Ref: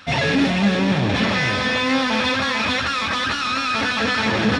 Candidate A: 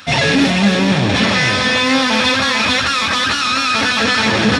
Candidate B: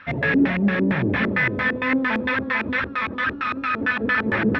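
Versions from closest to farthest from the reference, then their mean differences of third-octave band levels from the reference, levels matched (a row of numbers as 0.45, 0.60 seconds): A, B; 2.0, 8.5 decibels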